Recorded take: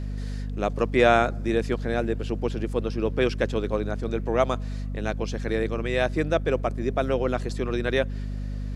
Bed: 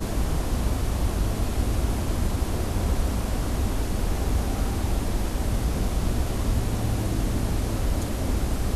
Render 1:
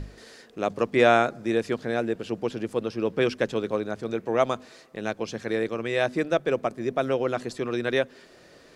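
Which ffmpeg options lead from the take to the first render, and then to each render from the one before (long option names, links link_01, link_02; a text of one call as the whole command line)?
ffmpeg -i in.wav -af "bandreject=frequency=50:width_type=h:width=6,bandreject=frequency=100:width_type=h:width=6,bandreject=frequency=150:width_type=h:width=6,bandreject=frequency=200:width_type=h:width=6,bandreject=frequency=250:width_type=h:width=6" out.wav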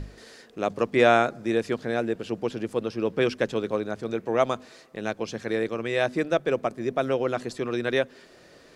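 ffmpeg -i in.wav -af anull out.wav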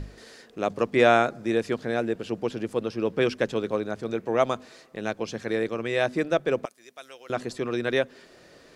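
ffmpeg -i in.wav -filter_complex "[0:a]asettb=1/sr,asplit=3[link_01][link_02][link_03];[link_01]atrim=end=6.654[link_04];[link_02]atrim=start=6.65:end=7.3,asetpts=PTS-STARTPTS,afade=type=in:duration=0.004:curve=qsin,afade=type=out:start_time=0.646:duration=0.004:curve=qsin,aderivative[link_05];[link_03]atrim=start=7.296[link_06];[link_04][link_05]acrossfade=duration=0.004:curve1=hsin:curve2=qsin[link_07];[link_07][link_06]acrossfade=duration=0.004:curve1=qsin:curve2=hsin" out.wav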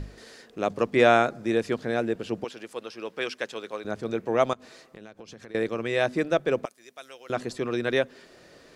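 ffmpeg -i in.wav -filter_complex "[0:a]asettb=1/sr,asplit=3[link_01][link_02][link_03];[link_01]atrim=end=2.444[link_04];[link_02]atrim=start=2.44:end=3.85,asetpts=PTS-STARTPTS,afade=type=in:duration=0.004:curve=qsin,afade=type=out:start_time=1.406:duration=0.004:curve=qsin,highpass=frequency=1200:poles=1[link_05];[link_03]atrim=start=3.846[link_06];[link_04][link_05]acrossfade=duration=0.004:curve1=hsin:curve2=qsin[link_07];[link_07][link_06]acrossfade=duration=0.004:curve1=qsin:curve2=hsin,asettb=1/sr,asplit=3[link_08][link_09][link_10];[link_08]atrim=end=4.534[link_11];[link_09]atrim=start=4.53:end=5.55,asetpts=PTS-STARTPTS,afade=type=in:duration=0.004:curve=qsin,afade=type=out:start_time=1.016:duration=0.004:curve=qsin,acompressor=threshold=-40dB:ratio=12:attack=3.2:release=140:knee=1:detection=peak[link_12];[link_10]atrim=start=5.546[link_13];[link_11][link_12]acrossfade=duration=0.004:curve1=hsin:curve2=qsin[link_14];[link_14][link_13]acrossfade=duration=0.004:curve1=qsin:curve2=hsin" out.wav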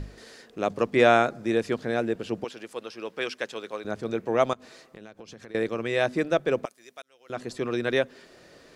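ffmpeg -i in.wav -filter_complex "[0:a]asplit=2[link_01][link_02];[link_01]atrim=end=7.02,asetpts=PTS-STARTPTS,afade=type=out:start_time=7.016:duration=0.004:curve=hsin[link_03];[link_02]atrim=start=7.02,asetpts=PTS-STARTPTS,afade=type=in:duration=0.6[link_04];[link_03][link_04]concat=n=2:v=0:a=1" out.wav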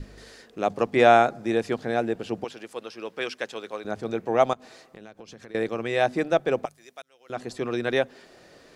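ffmpeg -i in.wav -af "bandreject=frequency=50.21:width_type=h:width=4,bandreject=frequency=100.42:width_type=h:width=4,bandreject=frequency=150.63:width_type=h:width=4,adynamicequalizer=threshold=0.00708:dfrequency=770:dqfactor=4.2:tfrequency=770:tqfactor=4.2:attack=5:release=100:ratio=0.375:range=4:mode=boostabove:tftype=bell" out.wav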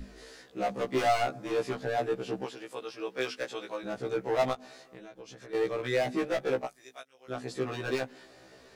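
ffmpeg -i in.wav -af "volume=22dB,asoftclip=hard,volume=-22dB,afftfilt=real='re*1.73*eq(mod(b,3),0)':imag='im*1.73*eq(mod(b,3),0)':win_size=2048:overlap=0.75" out.wav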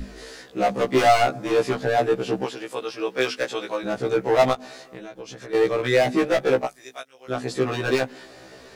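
ffmpeg -i in.wav -af "volume=9.5dB" out.wav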